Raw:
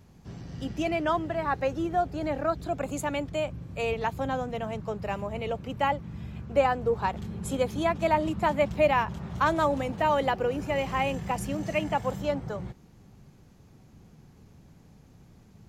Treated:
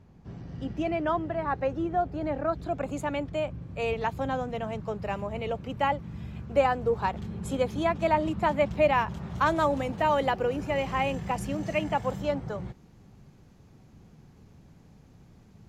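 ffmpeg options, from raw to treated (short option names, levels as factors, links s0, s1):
-af "asetnsamples=n=441:p=0,asendcmd='2.53 lowpass f 3000;3.82 lowpass f 6400;5.99 lowpass f 12000;7.09 lowpass f 5400;8.94 lowpass f 12000;10.56 lowpass f 7000',lowpass=f=1700:p=1"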